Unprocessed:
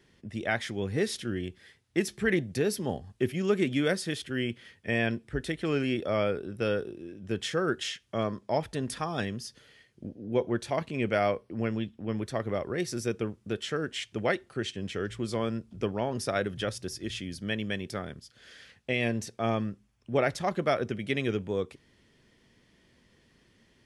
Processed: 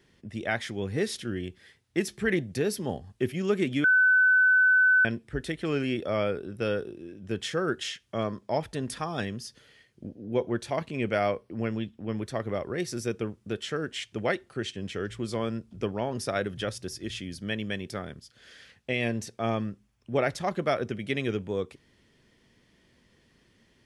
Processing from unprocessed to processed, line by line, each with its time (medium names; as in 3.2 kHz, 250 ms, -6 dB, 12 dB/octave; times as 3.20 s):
3.84–5.05 s: bleep 1.51 kHz -17 dBFS